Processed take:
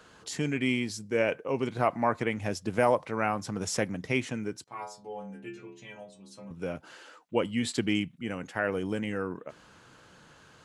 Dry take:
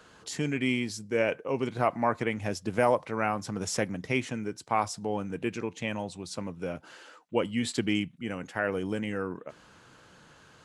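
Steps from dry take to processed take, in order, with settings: 4.64–6.51 metallic resonator 63 Hz, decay 0.77 s, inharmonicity 0.008

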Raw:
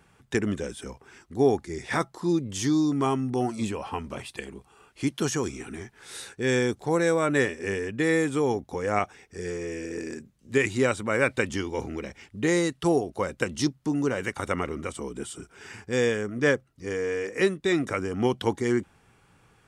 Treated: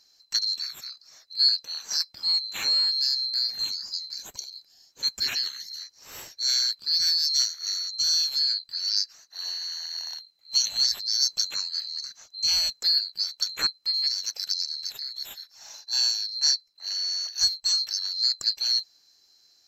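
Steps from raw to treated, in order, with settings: band-swap scrambler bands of 4000 Hz; high shelf 9900 Hz -5 dB

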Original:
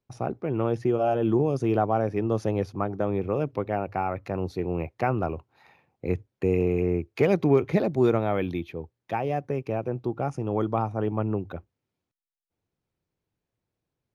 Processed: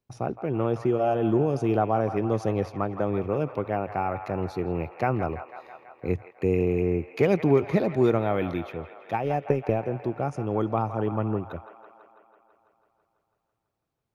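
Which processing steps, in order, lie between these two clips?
9.13–9.83 transient shaper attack +9 dB, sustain -3 dB; on a send: band-limited delay 0.165 s, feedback 70%, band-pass 1400 Hz, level -9.5 dB

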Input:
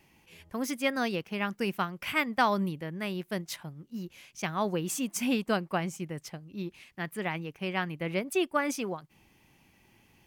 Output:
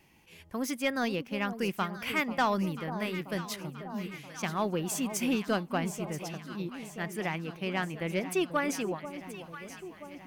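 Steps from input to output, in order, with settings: soft clip -18.5 dBFS, distortion -19 dB; on a send: echo with dull and thin repeats by turns 0.489 s, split 1000 Hz, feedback 76%, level -10 dB

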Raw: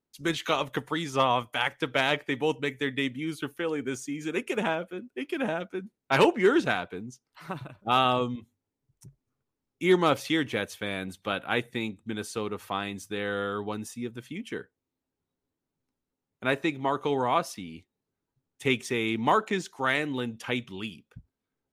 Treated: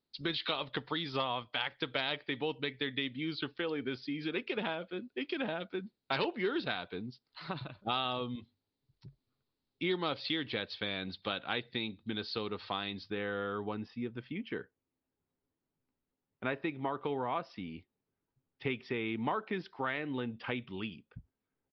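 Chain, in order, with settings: bell 4100 Hz +11.5 dB 0.69 oct, from 13.1 s -5.5 dB; compressor 3:1, threshold -31 dBFS, peak gain reduction 12 dB; downsampling 11025 Hz; gain -2 dB

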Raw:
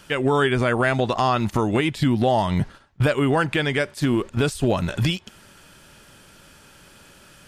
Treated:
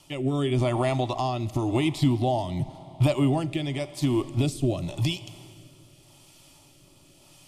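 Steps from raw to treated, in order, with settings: fixed phaser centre 310 Hz, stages 8; Schroeder reverb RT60 2.8 s, combs from 28 ms, DRR 15.5 dB; rotary speaker horn 0.9 Hz

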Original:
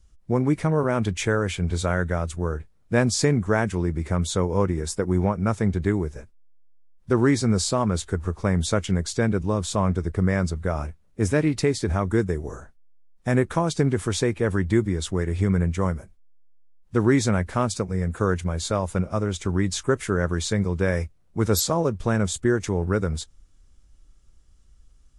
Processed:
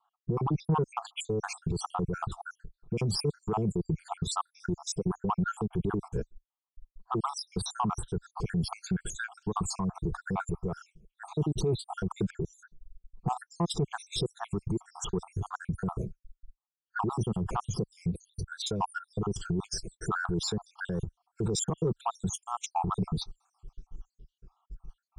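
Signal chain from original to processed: random spectral dropouts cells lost 74%; negative-ratio compressor -28 dBFS, ratio -1; HPF 63 Hz 6 dB/oct; tilt -4 dB/oct; low-pass opened by the level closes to 1700 Hz, open at -31.5 dBFS; low shelf 170 Hz -8.5 dB; limiter -24.5 dBFS, peak gain reduction 16.5 dB; fixed phaser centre 390 Hz, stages 8; soft clip -26 dBFS, distortion -24 dB; gain +8.5 dB

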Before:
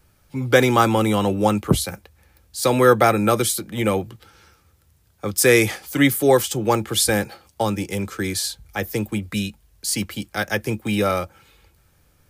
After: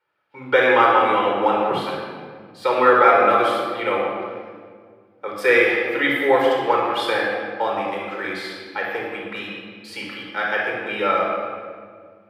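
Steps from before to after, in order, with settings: gate -50 dBFS, range -9 dB; HPF 720 Hz 12 dB/oct; air absorption 440 m; shoebox room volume 2900 m³, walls mixed, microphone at 4.5 m; gain +2 dB

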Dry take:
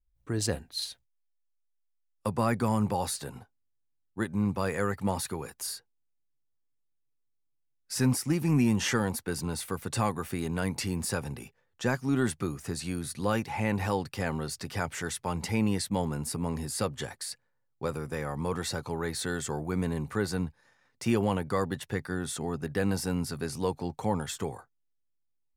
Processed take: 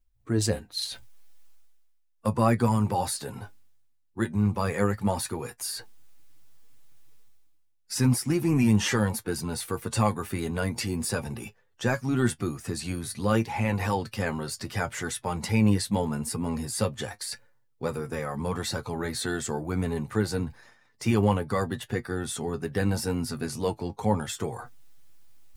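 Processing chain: bin magnitudes rounded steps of 15 dB; reverse; upward compressor, threshold -36 dBFS; reverse; flange 0.73 Hz, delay 8.2 ms, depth 1.6 ms, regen +51%; gain +7 dB

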